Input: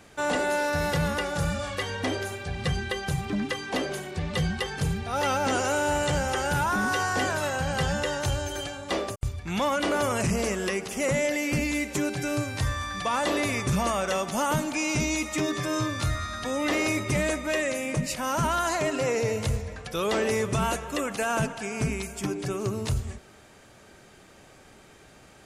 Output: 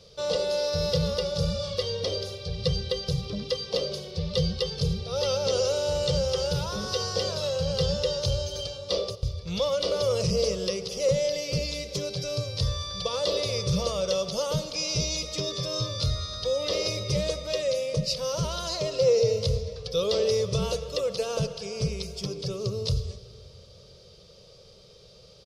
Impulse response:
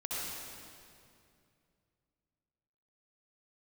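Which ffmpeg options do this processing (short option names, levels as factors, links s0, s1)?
-filter_complex "[0:a]firequalizer=gain_entry='entry(180,0);entry(260,-21);entry(490,9);entry(760,-15);entry(1200,-8);entry(1600,-20);entry(3400,3);entry(5000,11);entry(7200,-11)':delay=0.05:min_phase=1,asplit=2[s0][s1];[1:a]atrim=start_sample=2205[s2];[s1][s2]afir=irnorm=-1:irlink=0,volume=0.106[s3];[s0][s3]amix=inputs=2:normalize=0"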